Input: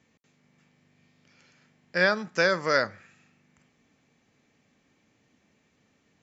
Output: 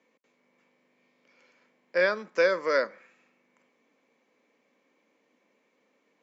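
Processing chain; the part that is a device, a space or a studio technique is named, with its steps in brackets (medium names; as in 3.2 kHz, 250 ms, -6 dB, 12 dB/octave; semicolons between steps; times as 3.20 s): high-pass 240 Hz 24 dB/octave; inside a helmet (treble shelf 5.4 kHz -9.5 dB; small resonant body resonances 520/1000/2200 Hz, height 9 dB, ringing for 25 ms); 2.00–2.91 s: dynamic bell 800 Hz, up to -7 dB, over -37 dBFS, Q 1.9; trim -3 dB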